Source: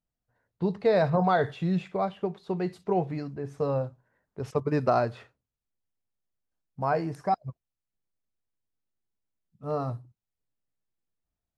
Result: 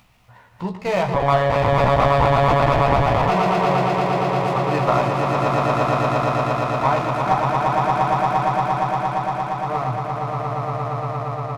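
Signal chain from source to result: echo with a slow build-up 116 ms, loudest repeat 8, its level -3.5 dB; 1.14–3.28 s: monotone LPC vocoder at 8 kHz 140 Hz; bass shelf 390 Hz -4.5 dB; upward compressor, threshold -38 dBFS; fifteen-band graphic EQ 100 Hz +8 dB, 400 Hz -5 dB, 1 kHz +9 dB, 2.5 kHz +11 dB; flange 0.8 Hz, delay 6.8 ms, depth 5.8 ms, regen -89%; band-stop 1.6 kHz, Q 9.1; doubling 16 ms -5 dB; sliding maximum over 5 samples; trim +6.5 dB

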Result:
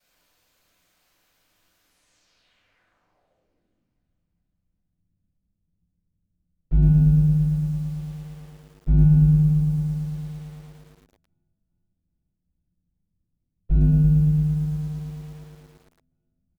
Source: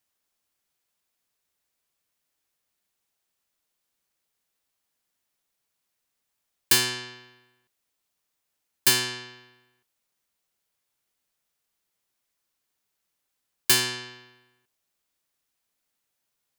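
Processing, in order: median filter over 3 samples; de-hum 171.4 Hz, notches 9; pitch shift -3.5 st; low-pass sweep 15 kHz -> 130 Hz, 1.79–3.98 s; ring modulator 51 Hz; in parallel at -7 dB: saturation -37.5 dBFS, distortion -8 dB; on the sum: thinning echo 402 ms, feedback 56%, high-pass 180 Hz, level -16 dB; simulated room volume 160 m³, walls mixed, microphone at 5.7 m; bit-crushed delay 112 ms, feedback 80%, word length 9-bit, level -3.5 dB

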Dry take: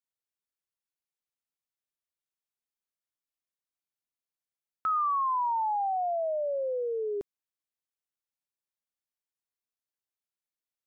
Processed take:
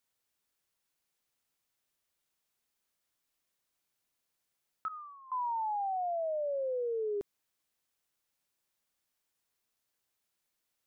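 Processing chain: 4.88–5.32 s: vowel filter e; in parallel at -3 dB: compressor with a negative ratio -37 dBFS, ratio -0.5; on the sum: peak limiter -30.5 dBFS, peak gain reduction 8 dB

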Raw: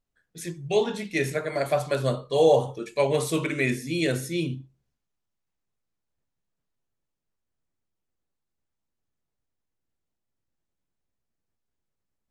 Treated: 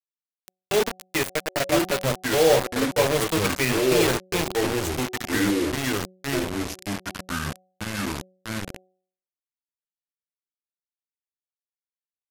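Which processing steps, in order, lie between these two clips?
bit crusher 4-bit; ever faster or slower copies 797 ms, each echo -4 st, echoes 2; de-hum 185.3 Hz, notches 4

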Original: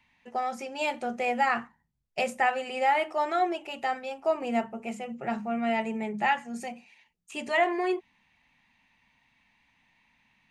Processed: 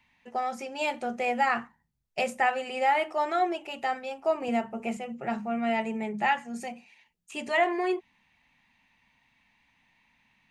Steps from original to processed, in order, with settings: 4.48–4.97 s: three bands compressed up and down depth 70%

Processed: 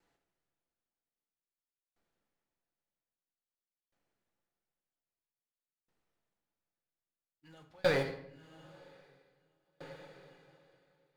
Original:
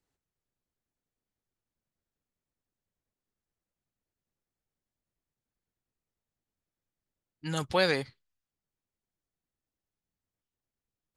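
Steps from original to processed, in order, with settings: band-stop 1.1 kHz, Q 18; in parallel at -1.5 dB: compressor with a negative ratio -30 dBFS; on the sum: short-mantissa float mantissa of 2-bit; overdrive pedal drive 15 dB, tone 1.6 kHz, clips at -22 dBFS; on a send: echo that smears into a reverb 1119 ms, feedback 49%, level -12 dB; on the sum: simulated room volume 330 m³, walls mixed, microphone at 0.76 m; sawtooth tremolo in dB decaying 0.51 Hz, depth 32 dB; trim -2.5 dB

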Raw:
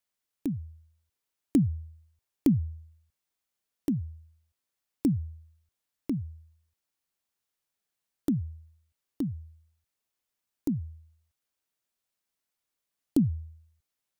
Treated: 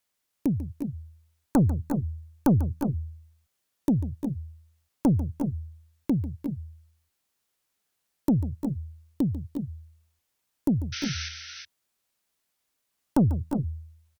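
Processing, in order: Chebyshev shaper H 4 -15 dB, 5 -13 dB, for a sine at -12 dBFS; painted sound noise, 10.92–11.29 s, 1.3–6.2 kHz -35 dBFS; multi-tap echo 144/349/363 ms -14.5/-11.5/-9 dB

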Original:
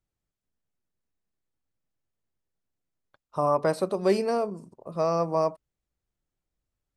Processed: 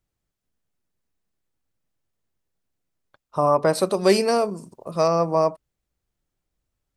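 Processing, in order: 3.75–5.08 s: treble shelf 2.2 kHz +9.5 dB; trim +5 dB

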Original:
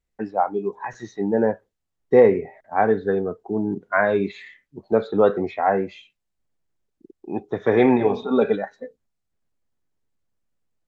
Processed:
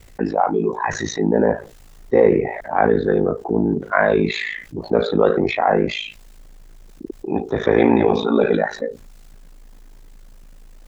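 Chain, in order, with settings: transient shaper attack -2 dB, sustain +3 dB; ring modulator 27 Hz; level flattener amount 50%; trim +1.5 dB

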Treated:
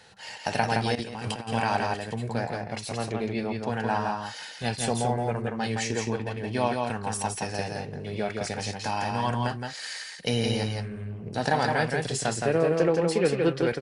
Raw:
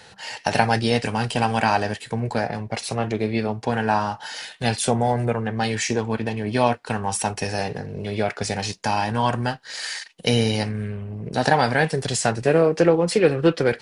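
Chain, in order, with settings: delay 168 ms -3.5 dB; 0.95–1.51 s: compressor with a negative ratio -26 dBFS, ratio -0.5; trim -7 dB

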